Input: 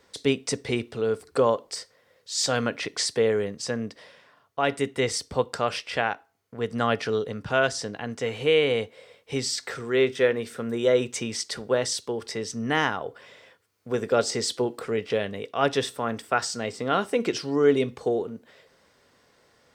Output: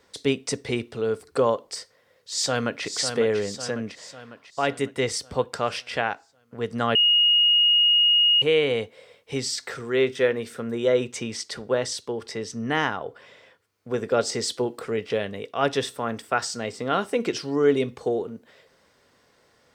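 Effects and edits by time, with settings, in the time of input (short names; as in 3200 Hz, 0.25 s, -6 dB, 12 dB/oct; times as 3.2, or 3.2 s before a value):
1.77–2.85 echo throw 0.55 s, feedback 55%, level -7.5 dB
6.95–8.42 bleep 2870 Hz -15 dBFS
10.6–14.25 high shelf 6000 Hz -5 dB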